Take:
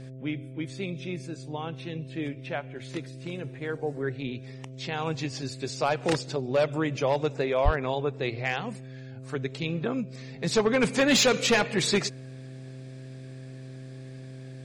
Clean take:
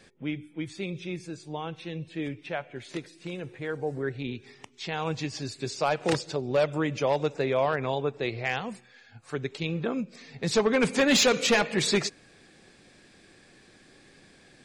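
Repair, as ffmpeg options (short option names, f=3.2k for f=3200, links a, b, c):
-filter_complex "[0:a]bandreject=f=130.5:t=h:w=4,bandreject=f=261:t=h:w=4,bandreject=f=391.5:t=h:w=4,bandreject=f=522:t=h:w=4,bandreject=f=652.5:t=h:w=4,asplit=3[a][b][c];[a]afade=t=out:st=7.64:d=0.02[d];[b]highpass=f=140:w=0.5412,highpass=f=140:w=1.3066,afade=t=in:st=7.64:d=0.02,afade=t=out:st=7.76:d=0.02[e];[c]afade=t=in:st=7.76:d=0.02[f];[d][e][f]amix=inputs=3:normalize=0"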